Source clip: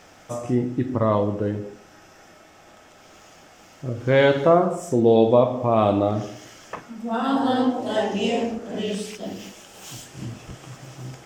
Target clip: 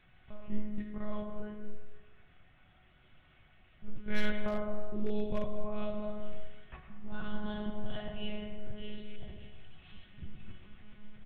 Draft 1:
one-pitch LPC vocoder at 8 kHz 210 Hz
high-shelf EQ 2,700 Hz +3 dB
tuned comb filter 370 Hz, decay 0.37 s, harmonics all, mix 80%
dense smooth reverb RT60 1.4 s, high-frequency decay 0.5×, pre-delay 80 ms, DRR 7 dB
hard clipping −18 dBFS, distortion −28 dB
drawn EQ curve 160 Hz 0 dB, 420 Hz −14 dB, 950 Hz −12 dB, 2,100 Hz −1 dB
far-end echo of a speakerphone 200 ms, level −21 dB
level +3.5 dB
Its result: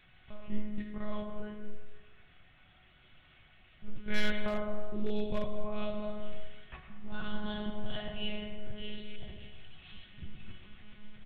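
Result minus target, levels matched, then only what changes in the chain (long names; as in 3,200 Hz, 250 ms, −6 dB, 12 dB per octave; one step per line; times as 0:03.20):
4,000 Hz band +5.0 dB
change: high-shelf EQ 2,700 Hz −7.5 dB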